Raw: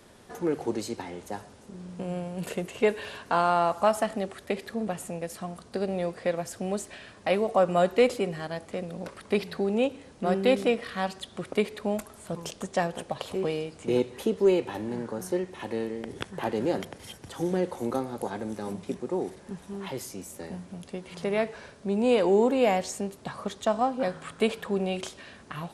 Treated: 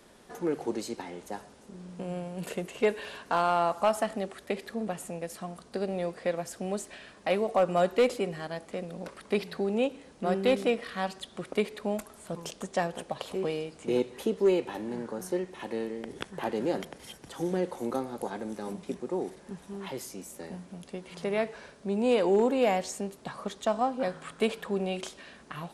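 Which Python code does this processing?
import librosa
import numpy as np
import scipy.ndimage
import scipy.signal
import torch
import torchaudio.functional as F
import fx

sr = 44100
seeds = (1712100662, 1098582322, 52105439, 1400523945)

y = fx.peak_eq(x, sr, hz=98.0, db=-12.0, octaves=0.53)
y = np.clip(y, -10.0 ** (-14.0 / 20.0), 10.0 ** (-14.0 / 20.0))
y = y * librosa.db_to_amplitude(-2.0)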